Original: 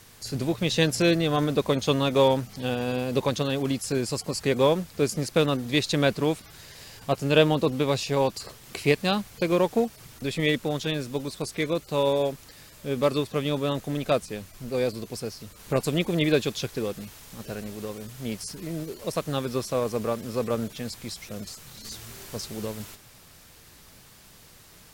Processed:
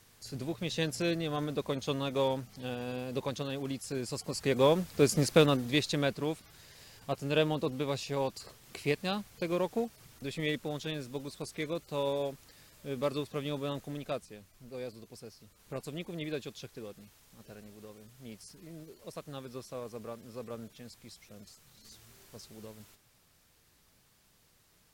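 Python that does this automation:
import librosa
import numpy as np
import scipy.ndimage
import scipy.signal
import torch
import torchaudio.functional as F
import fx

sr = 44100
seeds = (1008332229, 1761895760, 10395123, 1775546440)

y = fx.gain(x, sr, db=fx.line((3.92, -10.0), (5.24, 1.0), (6.14, -9.0), (13.77, -9.0), (14.37, -15.0)))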